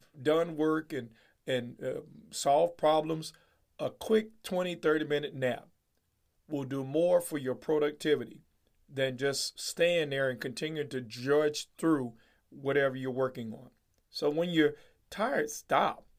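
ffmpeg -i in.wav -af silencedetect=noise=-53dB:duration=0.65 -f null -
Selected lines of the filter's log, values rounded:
silence_start: 5.66
silence_end: 6.49 | silence_duration: 0.83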